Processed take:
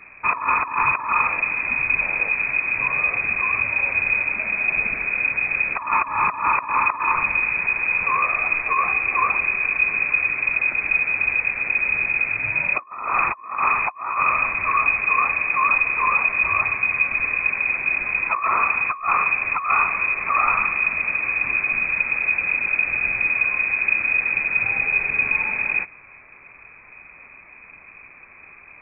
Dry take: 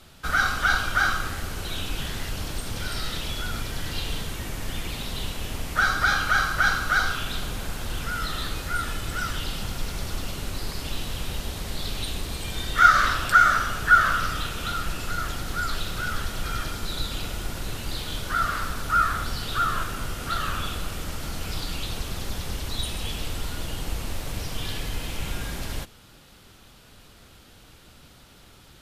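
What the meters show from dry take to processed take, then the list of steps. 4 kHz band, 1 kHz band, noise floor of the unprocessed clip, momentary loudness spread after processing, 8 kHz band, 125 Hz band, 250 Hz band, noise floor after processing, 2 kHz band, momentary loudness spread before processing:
under -40 dB, +3.5 dB, -51 dBFS, 3 LU, under -40 dB, -11.0 dB, -5.0 dB, -46 dBFS, +8.0 dB, 12 LU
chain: dynamic EQ 1300 Hz, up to +5 dB, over -34 dBFS, Q 1.9; negative-ratio compressor -23 dBFS, ratio -0.5; inverted band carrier 2500 Hz; gain +3.5 dB

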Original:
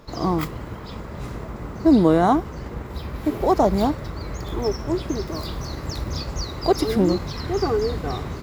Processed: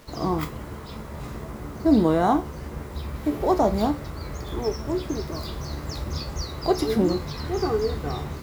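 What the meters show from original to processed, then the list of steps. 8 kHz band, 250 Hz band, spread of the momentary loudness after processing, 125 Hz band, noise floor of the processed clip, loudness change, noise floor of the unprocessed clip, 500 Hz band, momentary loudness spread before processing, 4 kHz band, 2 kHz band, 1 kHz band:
-2.0 dB, -3.0 dB, 15 LU, -3.0 dB, -38 dBFS, -3.0 dB, -35 dBFS, -2.5 dB, 16 LU, -2.5 dB, -2.5 dB, -3.0 dB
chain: resonator 73 Hz, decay 0.26 s, harmonics all, mix 70%; bit-crush 9-bit; gain +2.5 dB

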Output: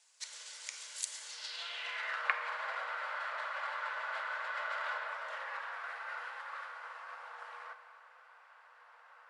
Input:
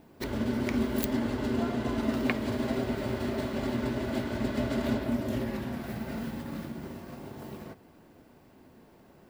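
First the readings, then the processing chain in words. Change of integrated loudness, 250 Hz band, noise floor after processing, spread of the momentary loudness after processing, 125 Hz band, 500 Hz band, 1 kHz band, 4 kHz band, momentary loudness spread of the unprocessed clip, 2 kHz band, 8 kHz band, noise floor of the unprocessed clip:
-8.0 dB, under -40 dB, -60 dBFS, 21 LU, under -40 dB, -17.0 dB, +1.0 dB, -1.0 dB, 13 LU, +3.0 dB, +3.5 dB, -57 dBFS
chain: FFT band-pass 460–11000 Hz; bell 600 Hz -10.5 dB 0.98 oct; in parallel at -2.5 dB: compressor, threshold -54 dBFS, peak gain reduction 25.5 dB; on the sum: Schroeder reverb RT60 1.7 s, combs from 29 ms, DRR 8.5 dB; band-pass sweep 7000 Hz -> 1300 Hz, 1.23–2.28; gain +8 dB

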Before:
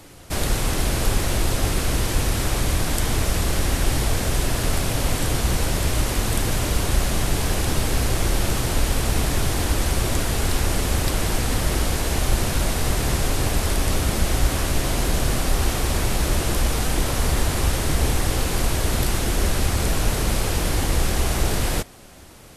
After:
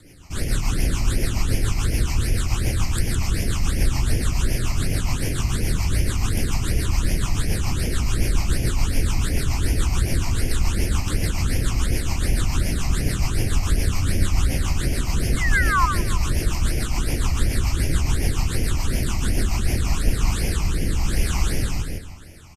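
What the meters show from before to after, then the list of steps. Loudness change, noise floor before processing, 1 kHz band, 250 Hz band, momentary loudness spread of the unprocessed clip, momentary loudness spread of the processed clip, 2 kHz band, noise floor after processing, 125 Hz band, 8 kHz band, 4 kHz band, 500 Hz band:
-1.0 dB, -26 dBFS, -3.0 dB, -1.0 dB, 1 LU, 2 LU, -0.5 dB, -27 dBFS, +1.0 dB, -4.0 dB, -4.0 dB, -6.0 dB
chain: rotary speaker horn 7 Hz, later 1 Hz, at 19.41; spring tank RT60 2.3 s, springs 57 ms, chirp 35 ms, DRR 12.5 dB; painted sound fall, 15.37–15.86, 980–2200 Hz -20 dBFS; on a send: feedback echo 0.16 s, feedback 34%, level -4 dB; on the sum: phaser stages 8, 2.7 Hz, lowest notch 460–1200 Hz

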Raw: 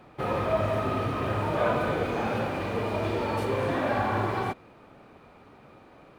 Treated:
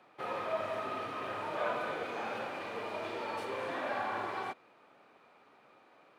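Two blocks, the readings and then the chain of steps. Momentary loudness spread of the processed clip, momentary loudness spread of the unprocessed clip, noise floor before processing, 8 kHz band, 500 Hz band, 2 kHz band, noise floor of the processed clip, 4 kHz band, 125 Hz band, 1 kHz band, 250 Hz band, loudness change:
5 LU, 4 LU, -54 dBFS, -8.0 dB, -10.0 dB, -6.0 dB, -63 dBFS, -6.0 dB, -24.0 dB, -7.0 dB, -15.0 dB, -9.0 dB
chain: weighting filter A; gain -7 dB

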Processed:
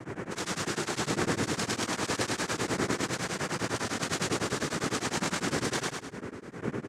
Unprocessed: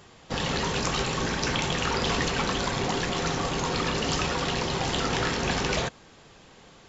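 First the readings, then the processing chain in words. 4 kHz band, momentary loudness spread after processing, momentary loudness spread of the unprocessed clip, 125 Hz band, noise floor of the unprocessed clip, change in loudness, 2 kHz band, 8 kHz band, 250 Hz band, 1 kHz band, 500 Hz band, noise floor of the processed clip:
-6.0 dB, 7 LU, 2 LU, -5.0 dB, -53 dBFS, -4.0 dB, -3.0 dB, n/a, -1.5 dB, -5.5 dB, -3.5 dB, -45 dBFS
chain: wind noise 290 Hz -31 dBFS; noise vocoder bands 3; on a send: feedback echo 0.103 s, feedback 40%, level -3 dB; on the sum: beating tremolo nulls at 9.9 Hz; gain -3.5 dB

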